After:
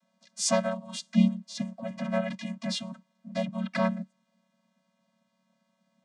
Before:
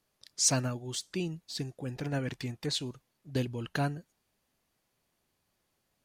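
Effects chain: low shelf 260 Hz -8.5 dB; vocoder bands 16, square 187 Hz; harmoniser +3 st -1 dB, +5 st -16 dB; gain +5 dB

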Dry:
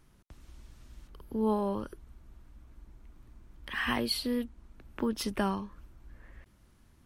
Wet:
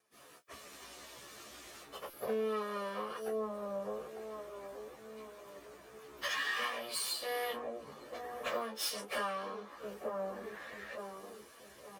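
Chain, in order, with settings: minimum comb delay 1.7 ms; dynamic EQ 680 Hz, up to -8 dB, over -56 dBFS, Q 7.7; in parallel at -7 dB: soft clip -34 dBFS, distortion -8 dB; on the sum: gate with hold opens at -51 dBFS; HPF 440 Hz 12 dB/oct; on a send: dark delay 0.525 s, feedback 38%, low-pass 610 Hz, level -8.5 dB; on the sum: compressor 10:1, threshold -45 dBFS, peak gain reduction 18.5 dB; doubler 14 ms -8 dB; plain phase-vocoder stretch 1.7×; stuck buffer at 2.1, samples 256, times 5; gain +13 dB

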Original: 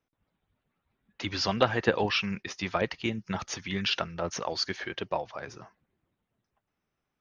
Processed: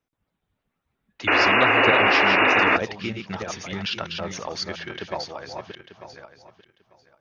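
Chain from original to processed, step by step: regenerating reverse delay 0.447 s, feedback 41%, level -5 dB; painted sound noise, 1.27–2.77, 250–2900 Hz -18 dBFS

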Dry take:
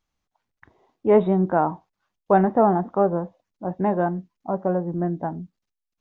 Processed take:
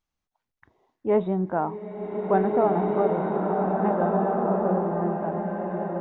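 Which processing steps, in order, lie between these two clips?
bloom reverb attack 1.89 s, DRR -2 dB; gain -5.5 dB

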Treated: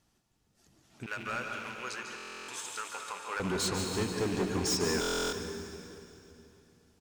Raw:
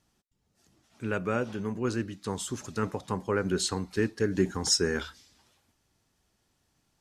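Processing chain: rattling part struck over -36 dBFS, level -34 dBFS; 1.06–3.4 HPF 1100 Hz 12 dB/oct; hard clip -28.5 dBFS, distortion -6 dB; echo 0.145 s -10.5 dB; reverb RT60 3.0 s, pre-delay 0.14 s, DRR 3 dB; stuck buffer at 2.16/5, samples 1024, times 13; ending taper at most 130 dB/s

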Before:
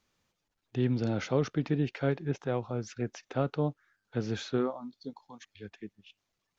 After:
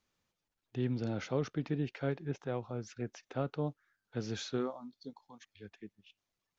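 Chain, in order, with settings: 3.66–5.25 dynamic EQ 6000 Hz, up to +7 dB, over -58 dBFS, Q 0.75; gain -5.5 dB

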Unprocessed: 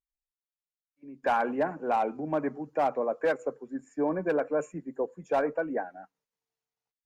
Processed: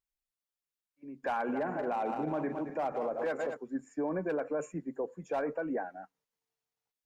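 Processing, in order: 1.38–3.57 regenerating reverse delay 0.11 s, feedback 65%, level -10 dB; limiter -25.5 dBFS, peak gain reduction 9.5 dB

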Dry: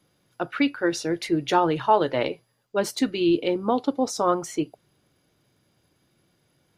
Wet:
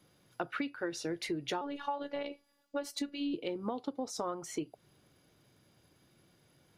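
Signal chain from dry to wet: 1.61–3.34 robotiser 285 Hz; compressor 10:1, threshold -33 dBFS, peak gain reduction 19 dB

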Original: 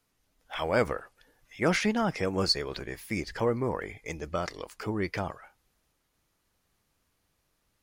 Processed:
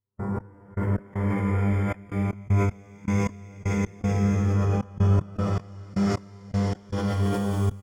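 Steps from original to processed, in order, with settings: fifteen-band EQ 630 Hz -12 dB, 1600 Hz -7 dB, 4000 Hz -4 dB; compressor, threshold -38 dBFS, peak gain reduction 14.5 dB; buzz 100 Hz, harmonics 20, -32 dBFS -8 dB/oct; Paulstretch 7.3×, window 0.25 s, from 3.67; tapped delay 87/309/546/708/759 ms -12.5/-6/-4/-5.5/-4.5 dB; Schroeder reverb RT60 0.51 s, combs from 32 ms, DRR -3 dB; step gate ".x..x.xxxx.x.x." 78 bpm -60 dB; harmonic-percussive split harmonic +4 dB; sustainer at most 28 dB/s; gain -2.5 dB

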